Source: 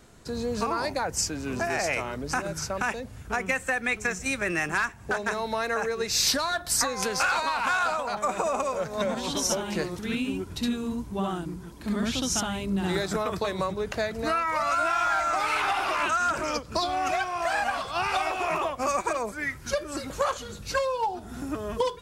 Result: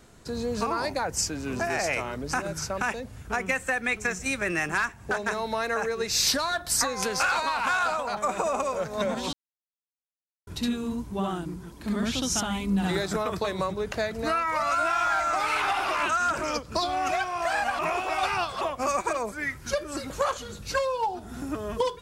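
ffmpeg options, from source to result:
-filter_complex "[0:a]asettb=1/sr,asplit=3[a][b][c];[a]atrim=end=12.504[d];[b]atrim=start=12.5:end=12.91,asetpts=PTS-STARTPTS,afade=t=in:d=0.004:c=qsin,afade=t=out:st=0.406:d=0.004:c=qsin,aecho=1:1:4.1:0.69,atrim=end_sample=18081[e];[c]atrim=start=12.906[f];[d][e]acrossfade=d=0.004:c1=hsin:c2=qsin[g];[g][f]acrossfade=d=0.004:c1=qsin:c2=hsin,asplit=5[h][i][j][k][l];[h]atrim=end=9.33,asetpts=PTS-STARTPTS,afade=t=out:st=9.326:d=0.004:c=hsin[m];[i]atrim=start=9.33:end=10.47,asetpts=PTS-STARTPTS,volume=0[n];[j]atrim=start=10.47:end=17.792,asetpts=PTS-STARTPTS,afade=t=in:d=0.004:c=hsin[o];[k]atrim=start=17.788:end=18.612,asetpts=PTS-STARTPTS,areverse[p];[l]atrim=start=18.608[q];[m][n][o]concat=n=3:v=0:a=1[r];[r][p]acrossfade=d=0.004:c1=hsin:c2=hsin[s];[s][q]acrossfade=d=0.004:c1=hsin:c2=hsin"

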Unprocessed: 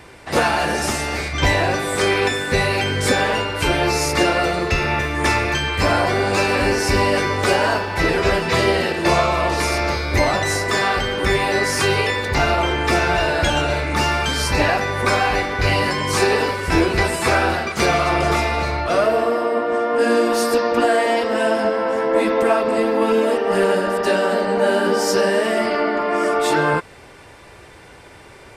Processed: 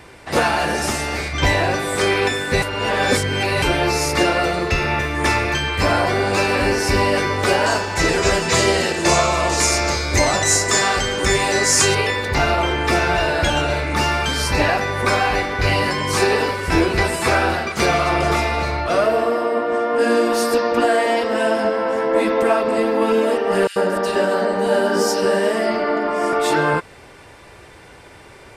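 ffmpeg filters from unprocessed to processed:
-filter_complex "[0:a]asettb=1/sr,asplit=3[a][b][c];[a]atrim=end=7.664[d];[b]atrim=start=7.66:end=11.95,asetpts=PTS-STARTPTS,afade=t=in:d=0.004:c=qsin,afade=t=out:st=4.286:d=0.004:c=qsin,equalizer=f=7.1k:t=o:w=0.74:g=15[e];[c]atrim=start=11.946[f];[d][e]acrossfade=d=0.004:c1=hsin:c2=qsin[g];[g][f]acrossfade=d=0.004:c1=qsin:c2=hsin,asettb=1/sr,asplit=3[h][i][j];[h]atrim=end=23.674[k];[i]atrim=start=23.67:end=26.33,asetpts=PTS-STARTPTS,afade=t=in:d=0.004:c=qsin,afade=t=out:st=2.656:d=0.004:c=qsin,acrossover=split=2400[l][m];[l]adelay=90[n];[n][m]amix=inputs=2:normalize=0,atrim=end_sample=117306[o];[j]atrim=start=26.326[p];[k][o]acrossfade=d=0.004:c1=hsin:c2=qsin[q];[q][p]acrossfade=d=0.004:c1=qsin:c2=hsin,asplit=3[r][s][t];[r]atrim=end=2.622[u];[s]atrim=start=2.618:end=3.622,asetpts=PTS-STARTPTS,areverse[v];[t]atrim=start=3.618[w];[u][v]acrossfade=d=0.004:c1=hsin:c2=hsin[x];[x][w]acrossfade=d=0.004:c1=hsin:c2=hsin"

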